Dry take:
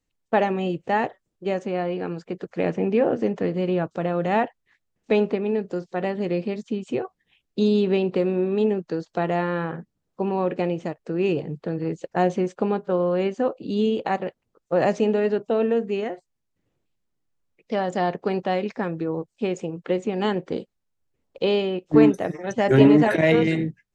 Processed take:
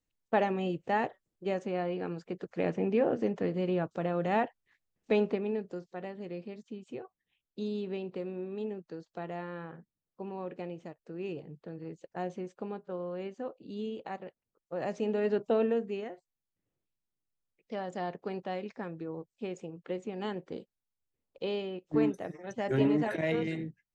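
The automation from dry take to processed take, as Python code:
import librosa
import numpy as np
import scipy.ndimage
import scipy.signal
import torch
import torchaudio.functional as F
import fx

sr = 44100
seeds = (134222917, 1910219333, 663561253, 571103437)

y = fx.gain(x, sr, db=fx.line((5.34, -7.0), (6.11, -15.5), (14.77, -15.5), (15.46, -4.0), (16.11, -12.5)))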